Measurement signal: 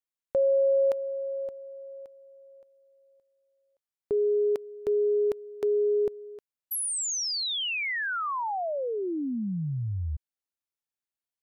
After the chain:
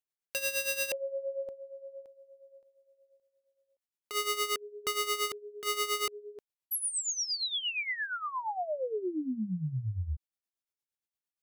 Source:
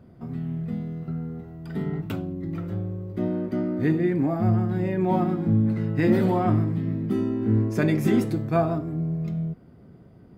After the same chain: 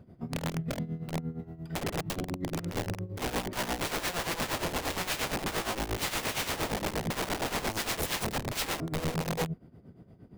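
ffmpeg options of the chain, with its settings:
ffmpeg -i in.wav -af "aeval=exprs='(mod(15.8*val(0)+1,2)-1)/15.8':channel_layout=same,equalizer=frequency=1300:width_type=o:width=0.83:gain=-3,tremolo=f=8.6:d=0.75" out.wav

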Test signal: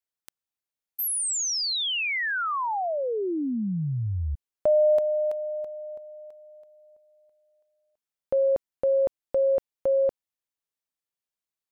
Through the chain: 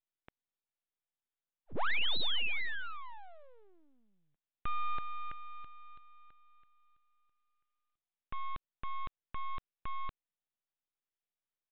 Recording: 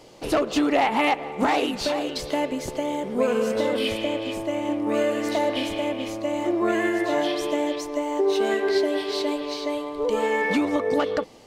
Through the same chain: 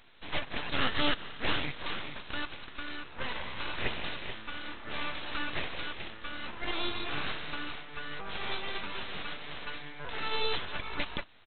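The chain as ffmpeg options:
ffmpeg -i in.wav -af "highpass=1200,aresample=8000,aeval=exprs='abs(val(0))':channel_layout=same,aresample=44100,volume=1dB" out.wav

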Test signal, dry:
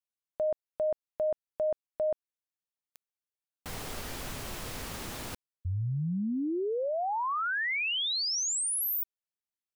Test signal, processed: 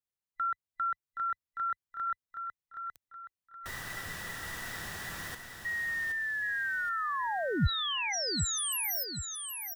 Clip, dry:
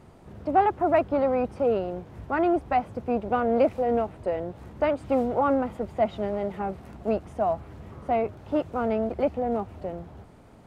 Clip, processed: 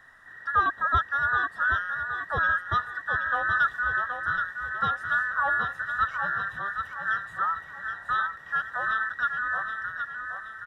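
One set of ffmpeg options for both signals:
ffmpeg -i in.wav -af "afftfilt=real='real(if(between(b,1,1012),(2*floor((b-1)/92)+1)*92-b,b),0)':imag='imag(if(between(b,1,1012),(2*floor((b-1)/92)+1)*92-b,b),0)*if(between(b,1,1012),-1,1)':win_size=2048:overlap=0.75,equalizer=frequency=82:width_type=o:width=1.9:gain=12,aecho=1:1:772|1544|2316|3088|3860:0.473|0.194|0.0795|0.0326|0.0134,adynamicequalizer=threshold=0.00141:dfrequency=160:dqfactor=2.9:tfrequency=160:tqfactor=2.9:attack=5:release=100:ratio=0.375:range=2.5:mode=boostabove:tftype=bell,volume=-3dB" out.wav

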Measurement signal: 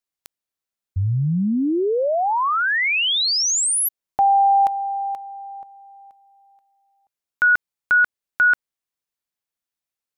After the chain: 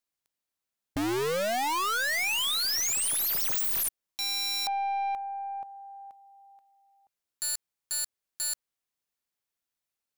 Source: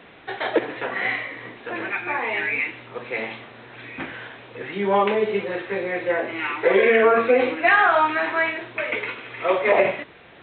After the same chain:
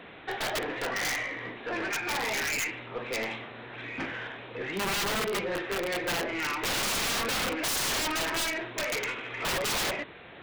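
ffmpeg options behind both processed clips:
ffmpeg -i in.wav -af "aeval=exprs='(mod(8.41*val(0)+1,2)-1)/8.41':channel_layout=same,aeval=exprs='(tanh(22.4*val(0)+0.1)-tanh(0.1))/22.4':channel_layout=same" out.wav

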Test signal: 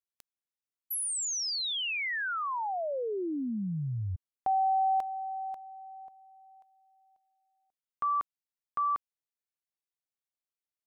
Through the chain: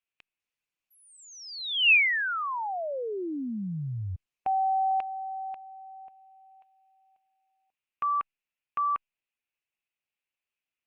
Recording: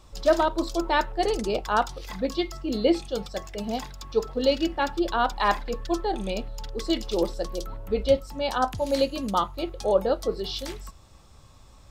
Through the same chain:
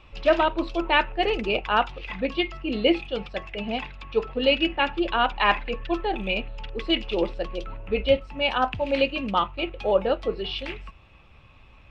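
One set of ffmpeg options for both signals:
ffmpeg -i in.wav -af "lowpass=frequency=2600:width_type=q:width=5.9" -ar 48000 -c:a libopus -b:a 48k out.opus

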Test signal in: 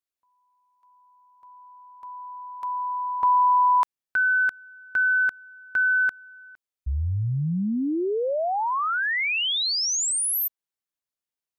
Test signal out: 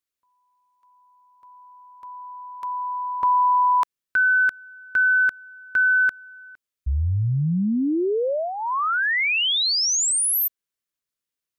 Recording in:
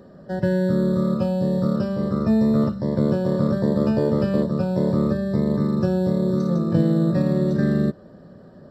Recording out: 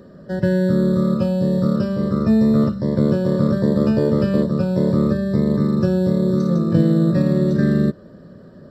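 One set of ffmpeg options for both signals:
ffmpeg -i in.wav -af "equalizer=frequency=790:width_type=o:width=0.46:gain=-9,volume=3.5dB" out.wav

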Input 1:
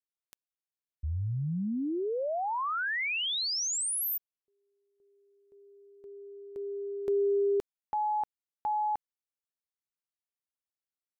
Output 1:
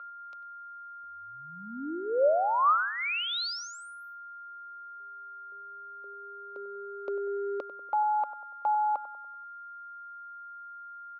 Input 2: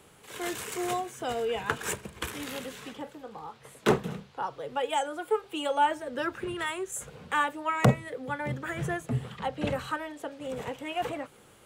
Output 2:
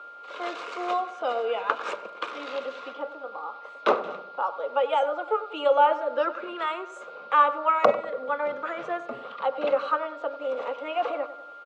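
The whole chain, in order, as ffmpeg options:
ffmpeg -i in.wav -filter_complex "[0:a]aeval=exprs='val(0)+0.00562*sin(2*PI*1400*n/s)':channel_layout=same,highpass=frequency=330:width=0.5412,highpass=frequency=330:width=1.3066,equalizer=frequency=390:width_type=q:width=4:gain=-8,equalizer=frequency=570:width_type=q:width=4:gain=9,equalizer=frequency=1200:width_type=q:width=4:gain=9,equalizer=frequency=1800:width_type=q:width=4:gain=-9,equalizer=frequency=3200:width_type=q:width=4:gain=-4,lowpass=frequency=4300:width=0.5412,lowpass=frequency=4300:width=1.3066,asplit=2[link_01][link_02];[link_02]adelay=96,lowpass=frequency=1700:poles=1,volume=-12.5dB,asplit=2[link_03][link_04];[link_04]adelay=96,lowpass=frequency=1700:poles=1,volume=0.53,asplit=2[link_05][link_06];[link_06]adelay=96,lowpass=frequency=1700:poles=1,volume=0.53,asplit=2[link_07][link_08];[link_08]adelay=96,lowpass=frequency=1700:poles=1,volume=0.53,asplit=2[link_09][link_10];[link_10]adelay=96,lowpass=frequency=1700:poles=1,volume=0.53[link_11];[link_01][link_03][link_05][link_07][link_09][link_11]amix=inputs=6:normalize=0,volume=2.5dB" out.wav

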